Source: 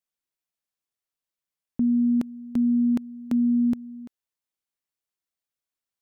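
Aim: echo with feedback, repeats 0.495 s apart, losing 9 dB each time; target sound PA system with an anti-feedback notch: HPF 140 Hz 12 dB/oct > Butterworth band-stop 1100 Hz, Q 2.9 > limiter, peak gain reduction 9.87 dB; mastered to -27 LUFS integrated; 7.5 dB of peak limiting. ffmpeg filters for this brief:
-af "alimiter=level_in=1dB:limit=-24dB:level=0:latency=1,volume=-1dB,highpass=140,asuperstop=centerf=1100:order=8:qfactor=2.9,aecho=1:1:495|990|1485|1980:0.355|0.124|0.0435|0.0152,volume=12dB,alimiter=limit=-22dB:level=0:latency=1"

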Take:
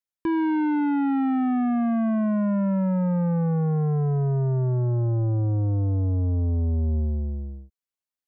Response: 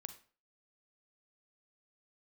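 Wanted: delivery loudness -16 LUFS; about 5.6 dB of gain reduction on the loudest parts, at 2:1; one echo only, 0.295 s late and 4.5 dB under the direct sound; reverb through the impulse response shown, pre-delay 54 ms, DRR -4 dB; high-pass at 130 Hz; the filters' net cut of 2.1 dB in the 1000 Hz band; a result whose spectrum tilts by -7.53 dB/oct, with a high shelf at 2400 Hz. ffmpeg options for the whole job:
-filter_complex "[0:a]highpass=130,equalizer=f=1k:t=o:g=-3.5,highshelf=f=2.4k:g=4.5,acompressor=threshold=-31dB:ratio=2,aecho=1:1:295:0.596,asplit=2[a][b];[1:a]atrim=start_sample=2205,adelay=54[c];[b][c]afir=irnorm=-1:irlink=0,volume=9dB[d];[a][d]amix=inputs=2:normalize=0,volume=8dB"

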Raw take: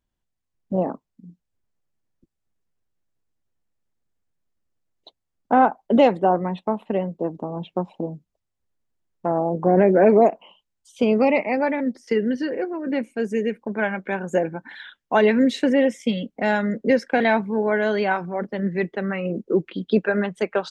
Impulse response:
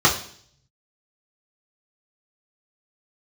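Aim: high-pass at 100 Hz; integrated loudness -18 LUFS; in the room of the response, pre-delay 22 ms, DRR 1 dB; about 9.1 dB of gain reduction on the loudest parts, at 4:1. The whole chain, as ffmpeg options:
-filter_complex "[0:a]highpass=100,acompressor=threshold=-21dB:ratio=4,asplit=2[a][b];[1:a]atrim=start_sample=2205,adelay=22[c];[b][c]afir=irnorm=-1:irlink=0,volume=-22dB[d];[a][d]amix=inputs=2:normalize=0,volume=6.5dB"

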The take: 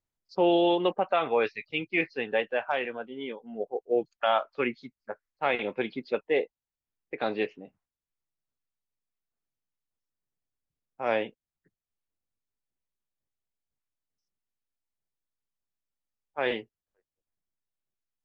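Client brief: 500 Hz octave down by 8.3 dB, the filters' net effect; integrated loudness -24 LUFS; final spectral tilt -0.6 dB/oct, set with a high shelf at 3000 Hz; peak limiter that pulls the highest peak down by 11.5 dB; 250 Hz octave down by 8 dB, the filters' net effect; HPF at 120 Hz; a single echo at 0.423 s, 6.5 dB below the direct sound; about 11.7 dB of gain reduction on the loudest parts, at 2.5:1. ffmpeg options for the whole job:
-af "highpass=120,equalizer=f=250:t=o:g=-7.5,equalizer=f=500:t=o:g=-8.5,highshelf=f=3k:g=8,acompressor=threshold=-40dB:ratio=2.5,alimiter=level_in=9dB:limit=-24dB:level=0:latency=1,volume=-9dB,aecho=1:1:423:0.473,volume=21.5dB"

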